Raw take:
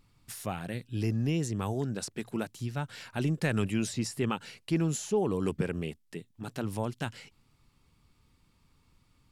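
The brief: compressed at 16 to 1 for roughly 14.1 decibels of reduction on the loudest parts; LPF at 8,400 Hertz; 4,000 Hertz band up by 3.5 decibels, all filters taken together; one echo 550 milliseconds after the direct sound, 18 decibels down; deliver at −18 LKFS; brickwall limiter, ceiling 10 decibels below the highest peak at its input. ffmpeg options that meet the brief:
ffmpeg -i in.wav -af "lowpass=8400,equalizer=frequency=4000:width_type=o:gain=5,acompressor=threshold=-37dB:ratio=16,alimiter=level_in=9dB:limit=-24dB:level=0:latency=1,volume=-9dB,aecho=1:1:550:0.126,volume=26.5dB" out.wav

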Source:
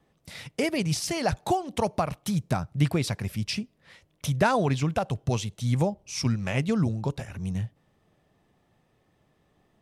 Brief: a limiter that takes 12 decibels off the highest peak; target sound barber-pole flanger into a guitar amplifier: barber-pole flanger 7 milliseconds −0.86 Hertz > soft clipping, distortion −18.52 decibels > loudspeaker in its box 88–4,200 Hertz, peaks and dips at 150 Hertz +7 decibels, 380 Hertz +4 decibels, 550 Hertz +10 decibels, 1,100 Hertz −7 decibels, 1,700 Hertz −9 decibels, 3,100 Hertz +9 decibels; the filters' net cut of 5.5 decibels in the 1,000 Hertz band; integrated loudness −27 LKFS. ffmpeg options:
ffmpeg -i in.wav -filter_complex "[0:a]equalizer=frequency=1000:width_type=o:gain=-8.5,alimiter=limit=-22.5dB:level=0:latency=1,asplit=2[link_01][link_02];[link_02]adelay=7,afreqshift=-0.86[link_03];[link_01][link_03]amix=inputs=2:normalize=1,asoftclip=threshold=-26.5dB,highpass=88,equalizer=frequency=150:width_type=q:width=4:gain=7,equalizer=frequency=380:width_type=q:width=4:gain=4,equalizer=frequency=550:width_type=q:width=4:gain=10,equalizer=frequency=1100:width_type=q:width=4:gain=-7,equalizer=frequency=1700:width_type=q:width=4:gain=-9,equalizer=frequency=3100:width_type=q:width=4:gain=9,lowpass=frequency=4200:width=0.5412,lowpass=frequency=4200:width=1.3066,volume=7.5dB" out.wav

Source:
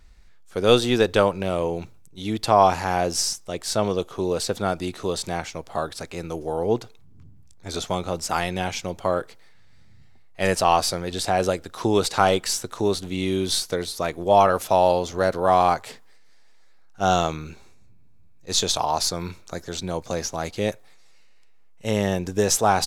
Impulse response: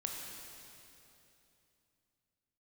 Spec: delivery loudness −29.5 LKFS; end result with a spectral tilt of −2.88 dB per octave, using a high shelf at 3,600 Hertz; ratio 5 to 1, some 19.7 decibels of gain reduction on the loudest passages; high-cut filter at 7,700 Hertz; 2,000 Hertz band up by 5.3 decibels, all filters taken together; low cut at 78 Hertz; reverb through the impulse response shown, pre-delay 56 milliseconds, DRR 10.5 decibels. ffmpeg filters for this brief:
-filter_complex "[0:a]highpass=78,lowpass=7700,equalizer=frequency=2000:width_type=o:gain=4.5,highshelf=frequency=3600:gain=9,acompressor=threshold=-33dB:ratio=5,asplit=2[link_01][link_02];[1:a]atrim=start_sample=2205,adelay=56[link_03];[link_02][link_03]afir=irnorm=-1:irlink=0,volume=-11.5dB[link_04];[link_01][link_04]amix=inputs=2:normalize=0,volume=6dB"

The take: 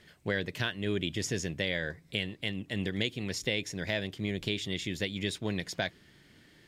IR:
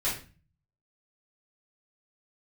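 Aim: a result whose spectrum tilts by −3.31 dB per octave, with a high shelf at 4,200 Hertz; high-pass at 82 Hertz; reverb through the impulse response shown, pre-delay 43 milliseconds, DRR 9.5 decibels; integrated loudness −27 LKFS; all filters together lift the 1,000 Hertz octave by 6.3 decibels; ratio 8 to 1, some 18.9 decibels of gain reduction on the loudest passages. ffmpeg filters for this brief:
-filter_complex "[0:a]highpass=82,equalizer=frequency=1000:width_type=o:gain=8.5,highshelf=frequency=4200:gain=8,acompressor=threshold=-44dB:ratio=8,asplit=2[link_01][link_02];[1:a]atrim=start_sample=2205,adelay=43[link_03];[link_02][link_03]afir=irnorm=-1:irlink=0,volume=-17.5dB[link_04];[link_01][link_04]amix=inputs=2:normalize=0,volume=20dB"

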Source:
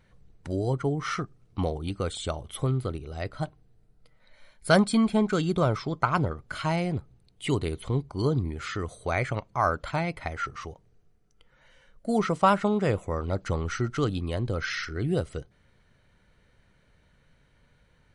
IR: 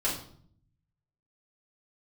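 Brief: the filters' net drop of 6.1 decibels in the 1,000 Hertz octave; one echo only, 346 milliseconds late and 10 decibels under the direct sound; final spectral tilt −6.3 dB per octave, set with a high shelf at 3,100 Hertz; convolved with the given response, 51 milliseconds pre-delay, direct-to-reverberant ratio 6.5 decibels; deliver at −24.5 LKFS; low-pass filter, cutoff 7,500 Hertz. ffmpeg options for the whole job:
-filter_complex "[0:a]lowpass=7500,equalizer=frequency=1000:width_type=o:gain=-7.5,highshelf=frequency=3100:gain=-6.5,aecho=1:1:346:0.316,asplit=2[link_01][link_02];[1:a]atrim=start_sample=2205,adelay=51[link_03];[link_02][link_03]afir=irnorm=-1:irlink=0,volume=-14.5dB[link_04];[link_01][link_04]amix=inputs=2:normalize=0,volume=4dB"

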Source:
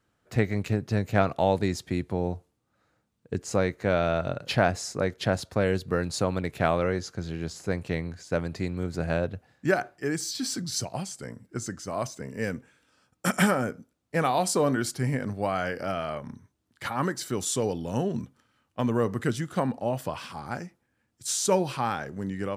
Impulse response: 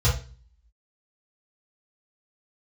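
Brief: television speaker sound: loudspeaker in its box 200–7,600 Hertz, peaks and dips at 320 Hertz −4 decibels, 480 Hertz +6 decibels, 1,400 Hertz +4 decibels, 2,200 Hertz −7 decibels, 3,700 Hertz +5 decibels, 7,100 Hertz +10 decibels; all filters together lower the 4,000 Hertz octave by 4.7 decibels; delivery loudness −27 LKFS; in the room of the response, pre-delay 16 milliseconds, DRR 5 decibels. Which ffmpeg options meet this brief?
-filter_complex "[0:a]equalizer=frequency=4000:width_type=o:gain=-9,asplit=2[link_01][link_02];[1:a]atrim=start_sample=2205,adelay=16[link_03];[link_02][link_03]afir=irnorm=-1:irlink=0,volume=-18dB[link_04];[link_01][link_04]amix=inputs=2:normalize=0,highpass=frequency=200:width=0.5412,highpass=frequency=200:width=1.3066,equalizer=frequency=320:width_type=q:width=4:gain=-4,equalizer=frequency=480:width_type=q:width=4:gain=6,equalizer=frequency=1400:width_type=q:width=4:gain=4,equalizer=frequency=2200:width_type=q:width=4:gain=-7,equalizer=frequency=3700:width_type=q:width=4:gain=5,equalizer=frequency=7100:width_type=q:width=4:gain=10,lowpass=frequency=7600:width=0.5412,lowpass=frequency=7600:width=1.3066,volume=-1.5dB"

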